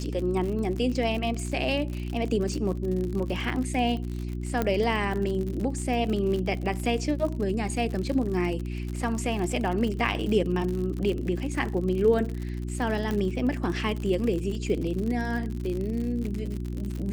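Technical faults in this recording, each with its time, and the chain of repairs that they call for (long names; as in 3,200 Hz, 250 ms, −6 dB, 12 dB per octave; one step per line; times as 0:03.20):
surface crackle 60 per second −31 dBFS
mains hum 60 Hz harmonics 6 −32 dBFS
0:04.62: click −13 dBFS
0:13.11: click −17 dBFS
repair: click removal
hum removal 60 Hz, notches 6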